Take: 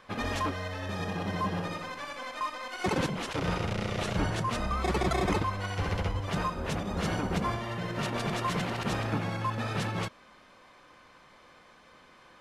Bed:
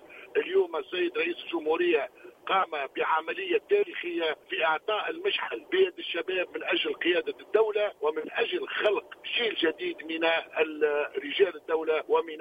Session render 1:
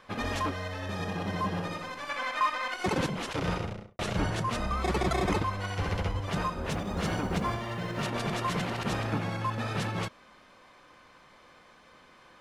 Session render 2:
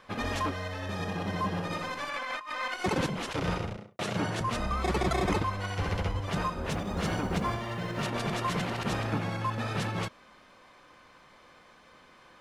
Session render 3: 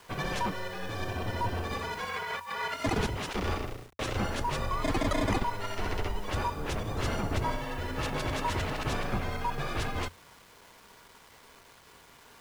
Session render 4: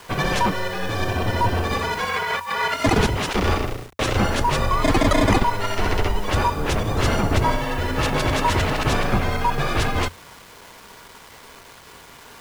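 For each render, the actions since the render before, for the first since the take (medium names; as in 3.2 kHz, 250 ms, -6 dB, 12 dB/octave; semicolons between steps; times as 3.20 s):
2.09–2.74 s: peaking EQ 1.7 kHz +8.5 dB 2.4 oct; 3.48–3.99 s: studio fade out; 6.69–8.07 s: companded quantiser 8-bit
1.70–2.58 s: compressor with a negative ratio -36 dBFS; 3.77–4.41 s: high-pass 110 Hz 24 dB/octave
bit crusher 9-bit; frequency shift -90 Hz
trim +11 dB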